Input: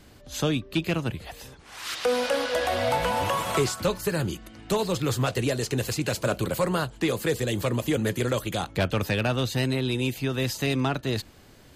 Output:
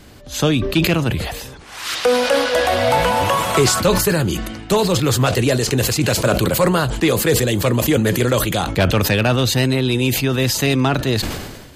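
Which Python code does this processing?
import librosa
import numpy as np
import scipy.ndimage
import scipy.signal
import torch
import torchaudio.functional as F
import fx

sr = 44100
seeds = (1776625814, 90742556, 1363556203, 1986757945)

y = fx.sustainer(x, sr, db_per_s=44.0)
y = y * 10.0 ** (8.5 / 20.0)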